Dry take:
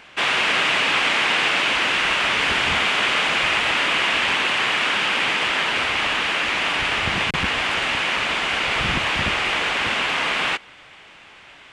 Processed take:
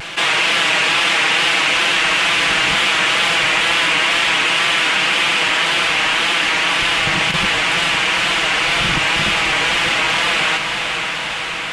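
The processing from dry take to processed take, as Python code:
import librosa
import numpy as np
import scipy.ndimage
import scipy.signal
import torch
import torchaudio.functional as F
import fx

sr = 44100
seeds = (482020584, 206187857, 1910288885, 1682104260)

p1 = fx.high_shelf(x, sr, hz=5000.0, db=8.5)
p2 = p1 + 0.67 * np.pad(p1, (int(6.1 * sr / 1000.0), 0))[:len(p1)]
p3 = fx.wow_flutter(p2, sr, seeds[0], rate_hz=2.1, depth_cents=66.0)
p4 = p3 + fx.echo_diffused(p3, sr, ms=508, feedback_pct=61, wet_db=-10, dry=0)
y = fx.env_flatten(p4, sr, amount_pct=50)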